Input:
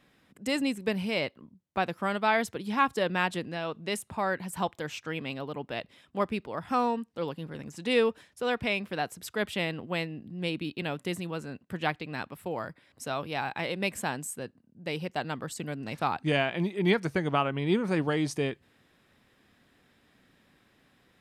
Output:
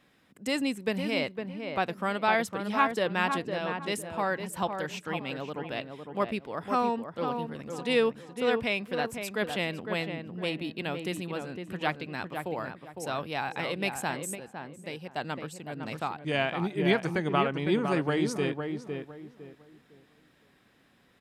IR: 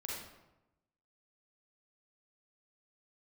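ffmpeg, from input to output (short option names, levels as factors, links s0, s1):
-filter_complex "[0:a]lowshelf=f=120:g=-4.5,asplit=2[s0][s1];[s1]adelay=507,lowpass=f=1700:p=1,volume=0.531,asplit=2[s2][s3];[s3]adelay=507,lowpass=f=1700:p=1,volume=0.29,asplit=2[s4][s5];[s5]adelay=507,lowpass=f=1700:p=1,volume=0.29,asplit=2[s6][s7];[s7]adelay=507,lowpass=f=1700:p=1,volume=0.29[s8];[s0][s2][s4][s6][s8]amix=inputs=5:normalize=0,asplit=3[s9][s10][s11];[s9]afade=t=out:st=14.34:d=0.02[s12];[s10]tremolo=f=1.7:d=0.56,afade=t=in:st=14.34:d=0.02,afade=t=out:st=16.61:d=0.02[s13];[s11]afade=t=in:st=16.61:d=0.02[s14];[s12][s13][s14]amix=inputs=3:normalize=0"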